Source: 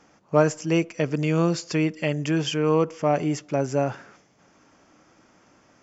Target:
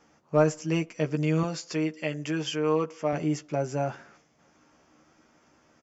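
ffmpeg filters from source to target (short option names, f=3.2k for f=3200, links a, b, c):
-filter_complex "[0:a]asettb=1/sr,asplit=3[a][b][c];[a]atrim=end=1.434[d];[b]atrim=start=1.43:end=3.13,asetpts=PTS-STARTPTS,afade=t=in:d=0.004:c=qsin,afade=t=out:st=1.696:d=0.004:c=qsin,highpass=f=280:p=1[e];[c]atrim=start=3.126[f];[d][e]acrossfade=d=0.004:c1=hsin:c2=qsin[g];[g][f]acrossfade=d=0.004:c1=qsin:c2=hsin,asplit=2[h][i];[i]asoftclip=type=hard:threshold=-13dB,volume=-9.5dB[j];[h][j]amix=inputs=2:normalize=0,asplit=2[k][l];[l]adelay=13,volume=-5dB[m];[k][m]amix=inputs=2:normalize=0,volume=-8dB"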